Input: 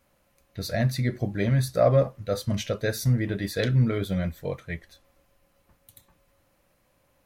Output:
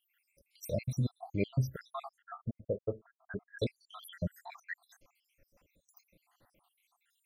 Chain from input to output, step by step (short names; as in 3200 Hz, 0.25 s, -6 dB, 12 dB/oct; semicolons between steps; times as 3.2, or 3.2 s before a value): random spectral dropouts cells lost 81%; in parallel at +1.5 dB: compressor, threshold -40 dBFS, peak gain reduction 18 dB; 2.22–3.59 on the sum: rippled Chebyshev low-pass 1700 Hz, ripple 6 dB; gain -5.5 dB